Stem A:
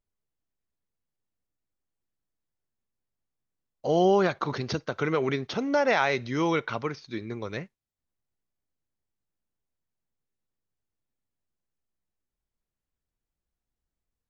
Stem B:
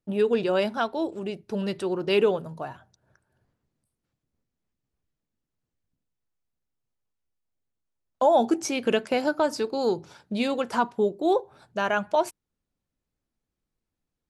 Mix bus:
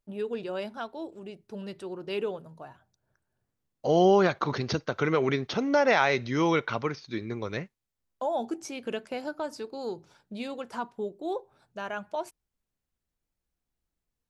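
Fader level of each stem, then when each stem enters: +1.0 dB, -10.0 dB; 0.00 s, 0.00 s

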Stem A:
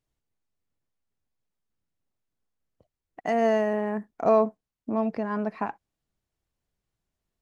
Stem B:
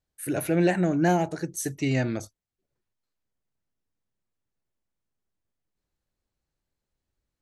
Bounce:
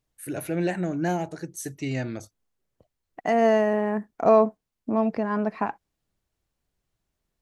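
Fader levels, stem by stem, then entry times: +3.0 dB, -4.0 dB; 0.00 s, 0.00 s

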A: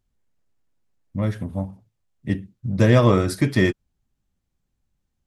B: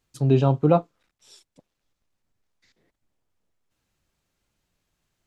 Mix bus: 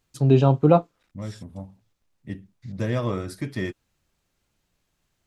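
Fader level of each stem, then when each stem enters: -10.5 dB, +2.0 dB; 0.00 s, 0.00 s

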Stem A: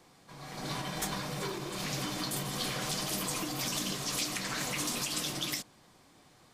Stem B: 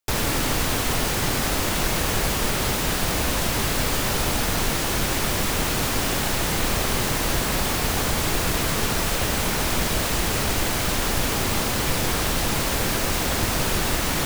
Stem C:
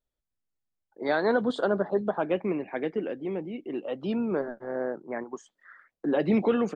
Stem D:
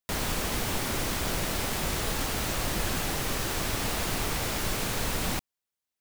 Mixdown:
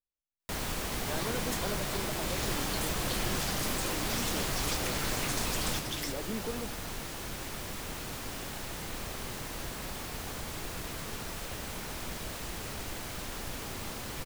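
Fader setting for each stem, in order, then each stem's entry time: -3.5 dB, -16.0 dB, -14.5 dB, -5.0 dB; 0.50 s, 2.30 s, 0.00 s, 0.40 s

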